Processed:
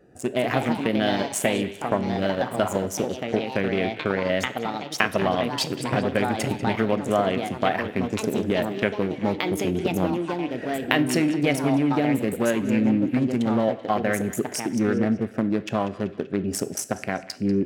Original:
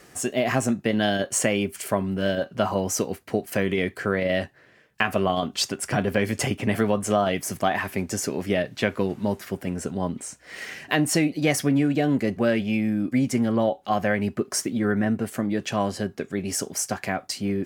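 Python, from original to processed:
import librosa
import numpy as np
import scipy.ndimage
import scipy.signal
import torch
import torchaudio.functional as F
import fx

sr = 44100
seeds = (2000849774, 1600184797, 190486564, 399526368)

y = fx.wiener(x, sr, points=41)
y = fx.recorder_agc(y, sr, target_db=-13.5, rise_db_per_s=13.0, max_gain_db=30)
y = fx.dynamic_eq(y, sr, hz=7100.0, q=1.1, threshold_db=-47.0, ratio=4.0, max_db=-6)
y = fx.echo_pitch(y, sr, ms=229, semitones=3, count=2, db_per_echo=-6.0)
y = fx.low_shelf(y, sr, hz=250.0, db=-5.5)
y = fx.echo_banded(y, sr, ms=192, feedback_pct=65, hz=2900.0, wet_db=-13.5)
y = fx.rev_plate(y, sr, seeds[0], rt60_s=0.64, hf_ratio=0.85, predelay_ms=0, drr_db=13.0)
y = y * librosa.db_to_amplitude(1.5)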